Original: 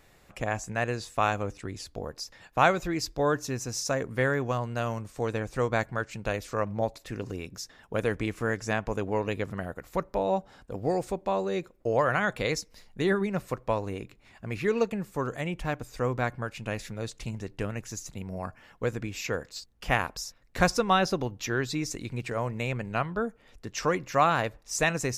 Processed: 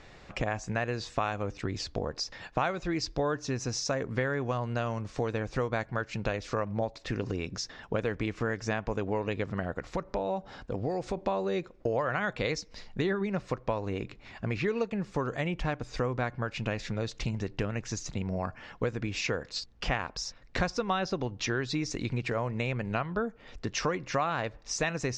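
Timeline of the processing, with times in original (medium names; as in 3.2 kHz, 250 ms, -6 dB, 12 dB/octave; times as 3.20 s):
9.91–11.17 s: compression 1.5:1, threshold -41 dBFS
whole clip: compression 4:1, threshold -36 dBFS; low-pass 5.9 kHz 24 dB/octave; trim +7.5 dB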